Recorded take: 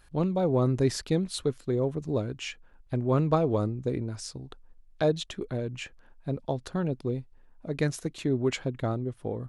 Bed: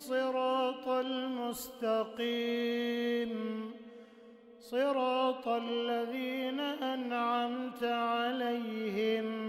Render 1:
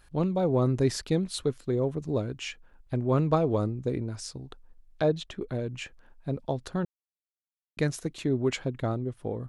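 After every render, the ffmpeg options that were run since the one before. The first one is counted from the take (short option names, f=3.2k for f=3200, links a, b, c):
-filter_complex "[0:a]asettb=1/sr,asplit=3[a][b][c];[a]atrim=end=5.024[d];[b]atrim=start=5.02:end=5.48,asetpts=PTS-STARTPTS,afade=t=in:d=0.004:c=qsin,afade=t=out:st=0.456:d=0.004:c=qsin,highshelf=f=4.4k:g=-10[e];[c]atrim=start=5.476[f];[d][e]acrossfade=d=0.004:c1=hsin:c2=qsin[g];[g][f]acrossfade=d=0.004:c1=qsin:c2=hsin,asplit=3[h][i][j];[h]atrim=end=6.85,asetpts=PTS-STARTPTS,afade=t=out:st=6.846:d=0.004:c=hsin[k];[i]atrim=start=6.85:end=7.77,asetpts=PTS-STARTPTS,volume=0[l];[j]atrim=start=7.77,asetpts=PTS-STARTPTS,afade=t=in:d=0.004:c=hsin[m];[k][l][m]concat=n=3:v=0:a=1"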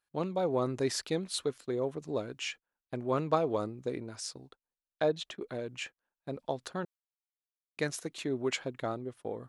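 -af "agate=range=-22dB:threshold=-43dB:ratio=16:detection=peak,highpass=f=550:p=1"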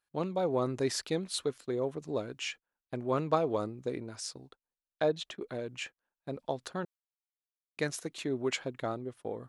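-af anull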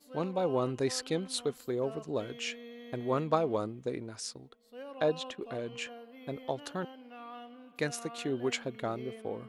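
-filter_complex "[1:a]volume=-14.5dB[a];[0:a][a]amix=inputs=2:normalize=0"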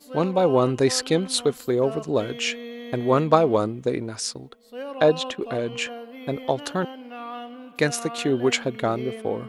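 -af "volume=11dB"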